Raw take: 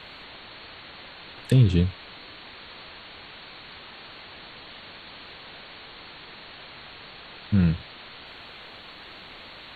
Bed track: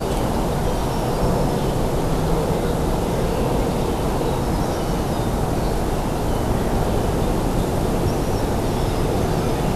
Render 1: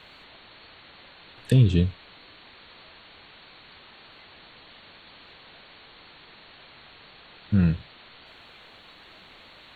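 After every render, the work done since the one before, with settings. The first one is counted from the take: noise print and reduce 6 dB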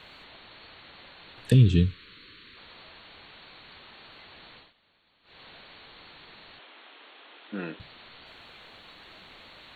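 1.54–2.57 s: Butterworth band-stop 740 Hz, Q 0.97; 4.55–5.41 s: dip -18 dB, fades 0.18 s; 6.59–7.80 s: elliptic band-pass 280–3500 Hz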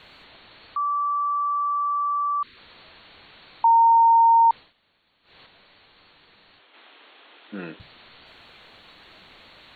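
0.76–2.43 s: bleep 1.16 kHz -21 dBFS; 3.64–4.51 s: bleep 919 Hz -12 dBFS; 5.46–6.74 s: feedback comb 97 Hz, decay 0.38 s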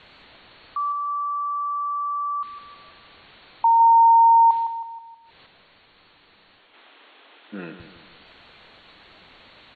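distance through air 66 m; feedback delay 159 ms, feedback 46%, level -10.5 dB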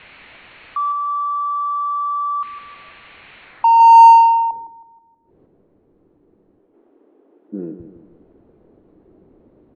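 low-pass sweep 2.4 kHz -> 360 Hz, 3.41–4.70 s; in parallel at -6.5 dB: saturation -16 dBFS, distortion -6 dB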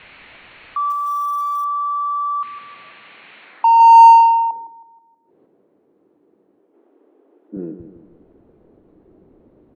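0.90–1.65 s: block-companded coder 5-bit; 2.29–3.65 s: high-pass 81 Hz -> 220 Hz 24 dB/octave; 4.20–7.57 s: high-pass 250 Hz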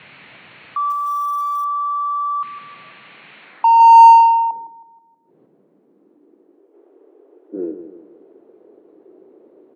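high-pass sweep 140 Hz -> 390 Hz, 5.49–6.74 s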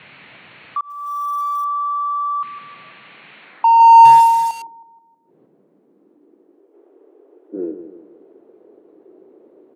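0.81–1.52 s: fade in equal-power; 4.05–4.62 s: one-bit delta coder 64 kbps, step -25 dBFS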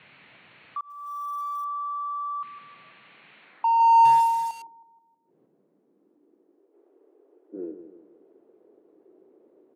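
trim -10 dB

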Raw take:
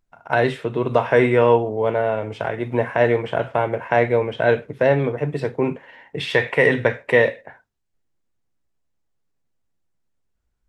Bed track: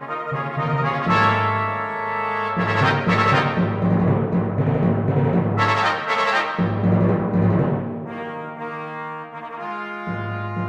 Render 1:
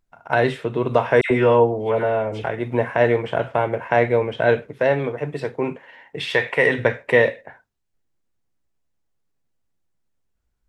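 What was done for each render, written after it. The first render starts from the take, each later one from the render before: 1.21–2.44 s: phase dispersion lows, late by 95 ms, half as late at 1.5 kHz; 4.68–6.79 s: bass shelf 340 Hz -6 dB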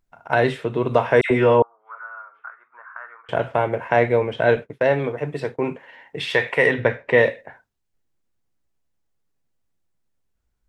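1.62–3.29 s: Butterworth band-pass 1.3 kHz, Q 4; 4.56–5.71 s: expander -36 dBFS; 6.71–7.18 s: distance through air 120 m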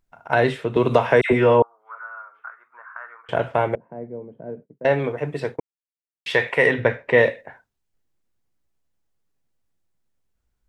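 0.76–1.33 s: three bands compressed up and down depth 70%; 3.75–4.85 s: ladder band-pass 230 Hz, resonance 35%; 5.60–6.26 s: mute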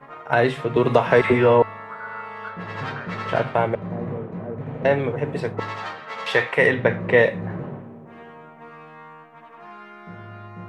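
add bed track -12.5 dB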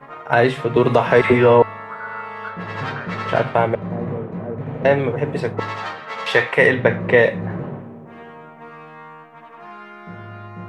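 trim +3.5 dB; peak limiter -2 dBFS, peak gain reduction 3 dB

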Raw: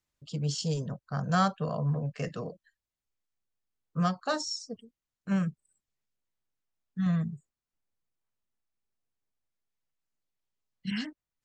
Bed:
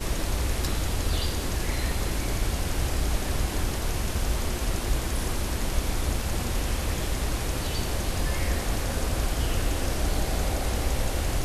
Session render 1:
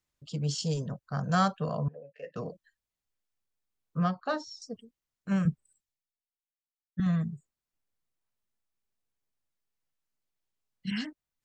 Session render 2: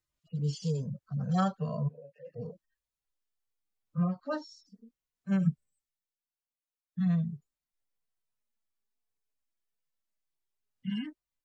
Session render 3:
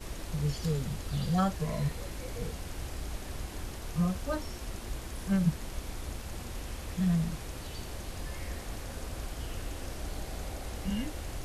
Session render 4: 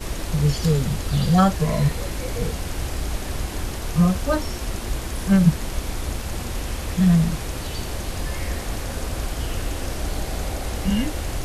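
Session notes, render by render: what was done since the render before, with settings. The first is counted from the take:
1.88–2.36 s: vowel filter e; 3.98–4.62 s: distance through air 200 m; 5.45–7.00 s: three bands expanded up and down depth 100%
harmonic-percussive separation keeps harmonic; dynamic bell 960 Hz, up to -3 dB, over -48 dBFS, Q 0.9
add bed -12 dB
trim +11.5 dB

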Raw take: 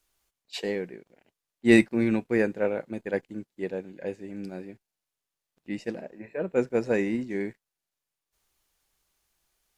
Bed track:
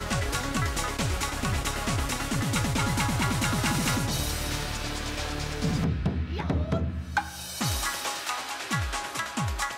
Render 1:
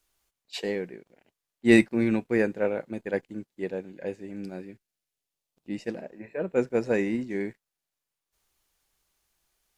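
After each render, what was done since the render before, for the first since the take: 4.60–5.74 s: peaking EQ 660 Hz -> 2 kHz -7.5 dB 0.92 oct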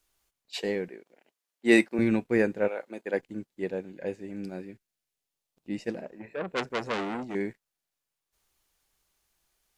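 0.88–1.99 s: high-pass 290 Hz; 2.67–3.18 s: high-pass 700 Hz -> 220 Hz; 6.05–7.35 s: transformer saturation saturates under 2.8 kHz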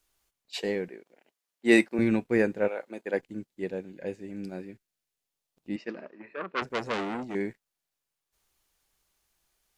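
3.26–4.52 s: peaking EQ 910 Hz -3 dB 2.1 oct; 5.76–6.62 s: cabinet simulation 270–4900 Hz, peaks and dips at 500 Hz -6 dB, 750 Hz -7 dB, 1.2 kHz +8 dB, 3.7 kHz -4 dB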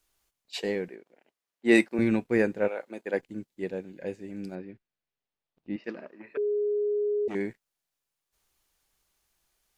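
0.95–1.75 s: treble shelf 3.8 kHz -7 dB; 4.55–5.84 s: distance through air 240 m; 6.37–7.28 s: bleep 415 Hz -24 dBFS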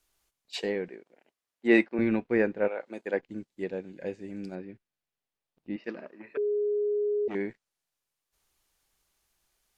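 low-pass that closes with the level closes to 2.9 kHz, closed at -25 dBFS; dynamic bell 110 Hz, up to -5 dB, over -40 dBFS, Q 0.81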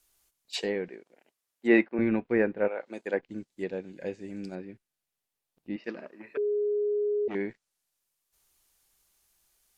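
low-pass that closes with the level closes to 2.5 kHz, closed at -24 dBFS; treble shelf 6.4 kHz +10 dB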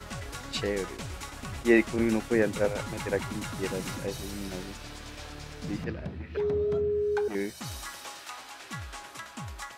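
add bed track -10.5 dB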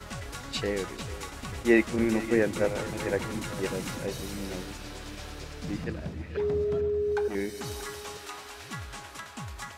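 chunks repeated in reverse 681 ms, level -14 dB; two-band feedback delay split 300 Hz, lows 243 ms, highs 444 ms, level -14.5 dB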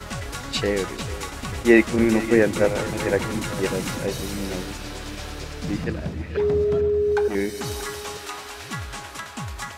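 trim +7 dB; peak limiter -3 dBFS, peak gain reduction 1 dB

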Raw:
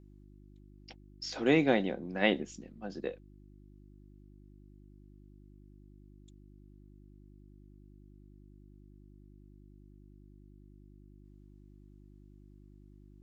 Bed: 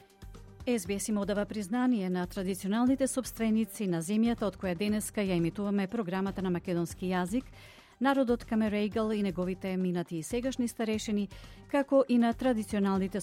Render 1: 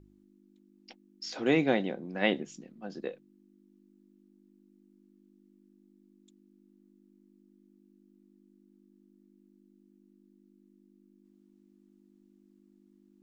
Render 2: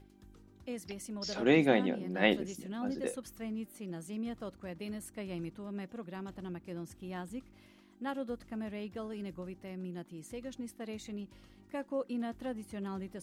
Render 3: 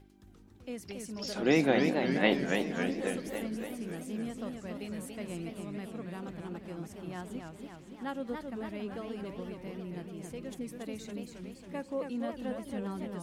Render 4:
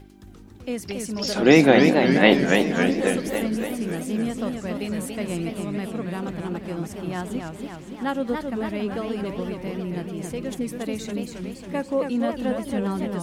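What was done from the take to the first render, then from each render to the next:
de-hum 50 Hz, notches 3
add bed -11 dB
reverse echo 73 ms -23 dB; modulated delay 278 ms, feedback 64%, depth 196 cents, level -5 dB
trim +11.5 dB; peak limiter -2 dBFS, peak gain reduction 1.5 dB

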